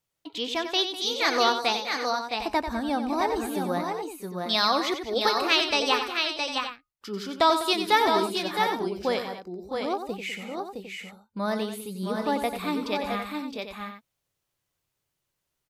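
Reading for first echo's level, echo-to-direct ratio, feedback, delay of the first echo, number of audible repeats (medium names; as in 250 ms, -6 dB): -9.0 dB, -2.5 dB, no regular repeats, 92 ms, 4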